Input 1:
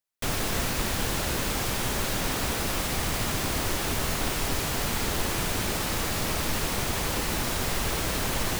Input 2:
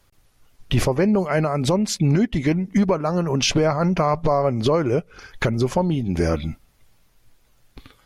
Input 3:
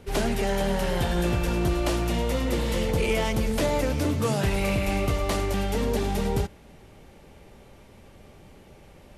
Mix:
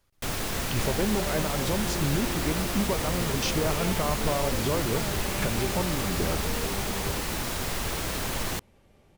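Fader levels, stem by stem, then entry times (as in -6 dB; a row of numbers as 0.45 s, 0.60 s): -2.5 dB, -10.0 dB, -10.0 dB; 0.00 s, 0.00 s, 0.70 s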